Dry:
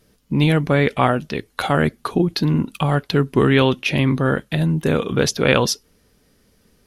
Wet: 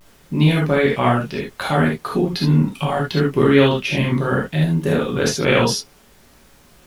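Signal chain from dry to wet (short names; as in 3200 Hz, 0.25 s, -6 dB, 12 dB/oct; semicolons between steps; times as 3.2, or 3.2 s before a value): added noise pink -51 dBFS; vibrato 0.66 Hz 53 cents; non-linear reverb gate 0.1 s flat, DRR -3 dB; gain -4.5 dB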